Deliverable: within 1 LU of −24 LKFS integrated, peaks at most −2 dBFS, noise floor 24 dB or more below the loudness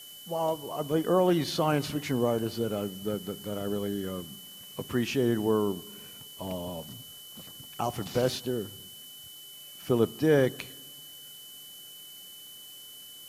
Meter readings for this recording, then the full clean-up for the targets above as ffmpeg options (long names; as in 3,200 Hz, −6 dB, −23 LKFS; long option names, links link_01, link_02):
interfering tone 3,000 Hz; level of the tone −47 dBFS; background noise floor −47 dBFS; target noise floor −54 dBFS; integrated loudness −29.5 LKFS; sample peak −11.0 dBFS; target loudness −24.0 LKFS
→ -af "bandreject=frequency=3000:width=30"
-af "afftdn=noise_reduction=7:noise_floor=-47"
-af "volume=5.5dB"